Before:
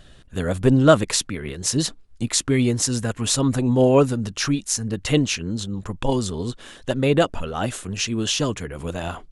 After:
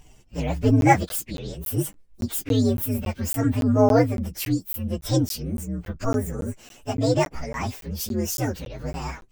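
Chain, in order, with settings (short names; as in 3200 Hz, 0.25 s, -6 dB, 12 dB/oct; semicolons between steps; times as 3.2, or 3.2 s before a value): inharmonic rescaling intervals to 127%; crackling interface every 0.28 s, samples 512, zero, from 0.81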